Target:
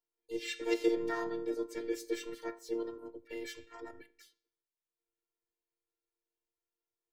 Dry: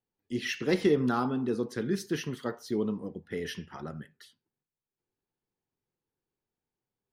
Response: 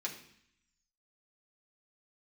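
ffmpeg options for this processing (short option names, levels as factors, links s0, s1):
-filter_complex "[0:a]asplit=2[s0][s1];[1:a]atrim=start_sample=2205,afade=t=out:st=0.36:d=0.01,atrim=end_sample=16317[s2];[s1][s2]afir=irnorm=-1:irlink=0,volume=0.2[s3];[s0][s3]amix=inputs=2:normalize=0,afftfilt=real='hypot(re,im)*cos(PI*b)':imag='0':win_size=512:overlap=0.75,asplit=2[s4][s5];[s5]asetrate=58866,aresample=44100,atempo=0.749154,volume=0.891[s6];[s4][s6]amix=inputs=2:normalize=0,volume=0.473"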